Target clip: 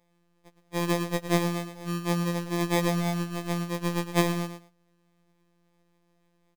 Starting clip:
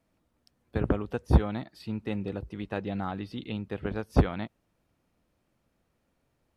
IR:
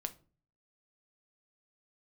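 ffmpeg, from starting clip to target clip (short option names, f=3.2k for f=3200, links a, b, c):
-filter_complex "[0:a]equalizer=f=2.6k:t=o:w=0.7:g=11.5,acrossover=split=190|2900[a][b][c];[a]acompressor=threshold=-37dB:ratio=6[d];[d][b][c]amix=inputs=3:normalize=0,crystalizer=i=2:c=0,asplit=2[e][f];[f]adynamicsmooth=sensitivity=8:basefreq=4k,volume=-0.5dB[g];[e][g]amix=inputs=2:normalize=0,asettb=1/sr,asplit=3[h][i][j];[h]atrim=end=2.424[k];[i]atrim=start=2.42:end=2.9,asetpts=PTS-STARTPTS,afade=t=in:d=0.004:c=qsin,afade=t=out:st=0.476:d=0.004:c=qsin,asplit=2[l][m];[m]highpass=f=720:p=1,volume=22dB,asoftclip=type=tanh:threshold=-9.5dB[n];[l][n]amix=inputs=2:normalize=0,lowpass=f=1.6k:p=1,volume=-6dB[o];[j]atrim=start=2.896[p];[k][o]acrossfade=d=0.004:c1=hsin:c2=qsin[q];[q][p]acrossfade=d=0.004:c1=qsin:c2=hsin,acrusher=samples=31:mix=1:aa=0.000001,afftfilt=real='hypot(re,im)*cos(PI*b)':imag='0':win_size=1024:overlap=0.75,aecho=1:1:111|222:0.316|0.0506,afftfilt=real='re*2.83*eq(mod(b,8),0)':imag='im*2.83*eq(mod(b,8),0)':win_size=2048:overlap=0.75,volume=-5dB"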